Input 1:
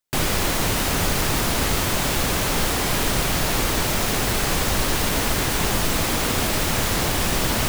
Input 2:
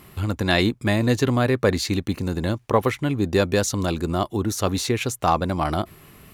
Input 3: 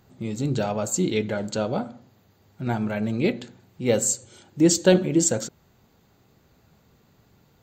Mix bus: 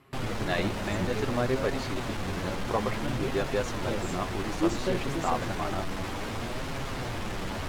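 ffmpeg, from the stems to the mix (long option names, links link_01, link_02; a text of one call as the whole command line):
ffmpeg -i stem1.wav -i stem2.wav -i stem3.wav -filter_complex "[0:a]asoftclip=type=tanh:threshold=-24.5dB,volume=-1dB[link_01];[1:a]lowshelf=frequency=200:gain=-9.5,volume=-4.5dB[link_02];[2:a]volume=-9dB[link_03];[link_01][link_02][link_03]amix=inputs=3:normalize=0,aemphasis=mode=reproduction:type=75fm,flanger=delay=7.3:depth=3.4:regen=42:speed=0.59:shape=sinusoidal" out.wav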